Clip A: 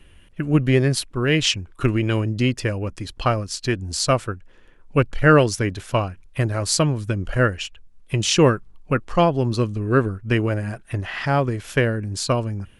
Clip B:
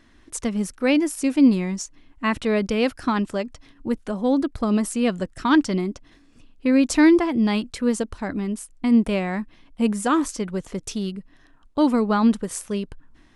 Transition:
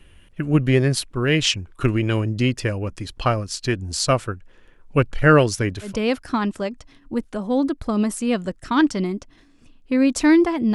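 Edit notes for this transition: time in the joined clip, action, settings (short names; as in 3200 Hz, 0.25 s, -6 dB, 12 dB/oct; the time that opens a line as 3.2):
clip A
5.89 switch to clip B from 2.63 s, crossfade 0.16 s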